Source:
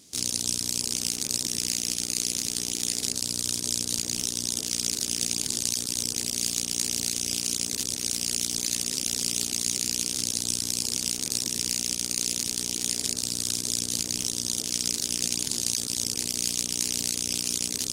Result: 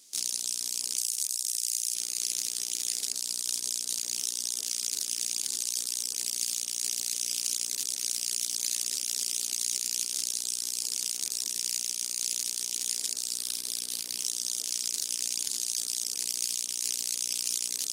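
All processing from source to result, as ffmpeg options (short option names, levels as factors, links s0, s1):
-filter_complex "[0:a]asettb=1/sr,asplit=3[s0][s1][s2];[s0]atrim=end=0.984[s3];[s1]atrim=start=0.98:end=1.95,asetpts=PTS-STARTPTS,afade=t=in:d=0.004:c=qsin,afade=t=out:st=0.966:d=0.004:c=qsin,equalizer=f=11000:t=o:w=1.7:g=9.5,acrossover=split=370|2300[s4][s5][s6];[s4]acompressor=threshold=0.00178:ratio=4[s7];[s5]acompressor=threshold=0.00251:ratio=4[s8];[s6]acompressor=threshold=0.0891:ratio=4[s9];[s7][s8][s9]amix=inputs=3:normalize=0[s10];[s2]atrim=start=1.946[s11];[s3][s10]acrossfade=d=0.004:c1=hsin:c2=qsin[s12];[s12][s11]acrossfade=d=0.004:c1=qsin:c2=hsin,asettb=1/sr,asplit=3[s13][s14][s15];[s13]atrim=end=13.384[s16];[s14]atrim=start=13.38:end=14.19,asetpts=PTS-STARTPTS,afade=t=in:d=0.004:c=qsin,afade=t=out:st=0.806:d=0.004:c=qsin,equalizer=f=6900:t=o:w=0.55:g=-8,acrusher=bits=8:mode=log:mix=0:aa=0.000001[s17];[s15]atrim=start=14.186[s18];[s16][s17]acrossfade=d=0.004:c1=hsin:c2=qsin[s19];[s19][s18]acrossfade=d=0.004:c1=qsin:c2=hsin,highpass=f=1000:p=1,highshelf=f=5000:g=6,alimiter=limit=0.422:level=0:latency=1:release=29,volume=0.562"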